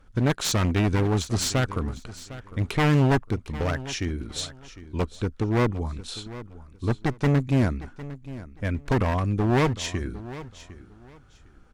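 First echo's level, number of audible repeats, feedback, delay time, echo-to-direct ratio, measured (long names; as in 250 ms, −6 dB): −16.0 dB, 2, 22%, 755 ms, −16.0 dB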